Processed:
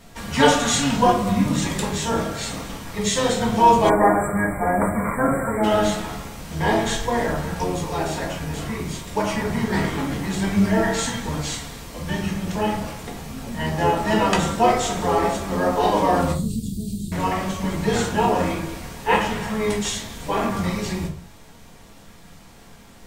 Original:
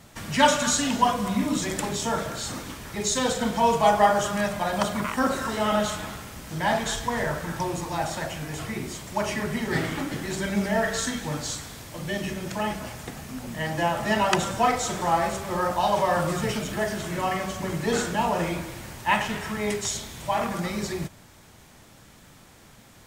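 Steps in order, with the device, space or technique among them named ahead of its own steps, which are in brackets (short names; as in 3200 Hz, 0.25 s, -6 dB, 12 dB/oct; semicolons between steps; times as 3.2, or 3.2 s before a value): 16.32–17.12 elliptic band-stop 270–7900 Hz, stop band 60 dB; octave pedal (harmoniser -12 st -4 dB); shoebox room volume 180 m³, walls furnished, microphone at 1.7 m; 3.89–5.64 spectral delete 2400–7400 Hz; gain -1 dB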